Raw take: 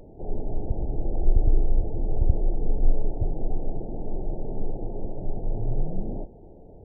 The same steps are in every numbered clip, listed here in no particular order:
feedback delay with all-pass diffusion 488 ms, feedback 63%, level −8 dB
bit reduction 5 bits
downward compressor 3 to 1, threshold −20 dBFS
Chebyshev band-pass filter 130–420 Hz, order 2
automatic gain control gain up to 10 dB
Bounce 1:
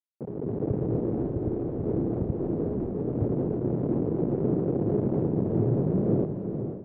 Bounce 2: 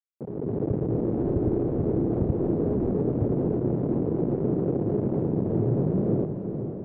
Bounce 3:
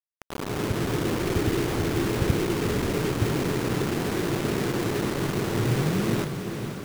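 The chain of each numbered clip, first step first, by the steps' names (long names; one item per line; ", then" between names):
bit reduction, then downward compressor, then feedback delay with all-pass diffusion, then automatic gain control, then Chebyshev band-pass filter
bit reduction, then Chebyshev band-pass filter, then automatic gain control, then downward compressor, then feedback delay with all-pass diffusion
Chebyshev band-pass filter, then downward compressor, then automatic gain control, then bit reduction, then feedback delay with all-pass diffusion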